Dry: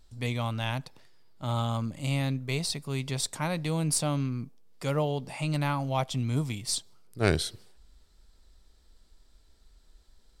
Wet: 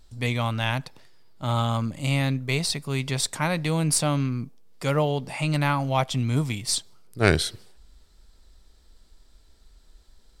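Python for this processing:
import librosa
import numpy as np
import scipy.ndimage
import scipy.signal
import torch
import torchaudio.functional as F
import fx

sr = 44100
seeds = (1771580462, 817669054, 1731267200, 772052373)

y = fx.dynamic_eq(x, sr, hz=1800.0, q=1.1, threshold_db=-47.0, ratio=4.0, max_db=4)
y = y * 10.0 ** (4.5 / 20.0)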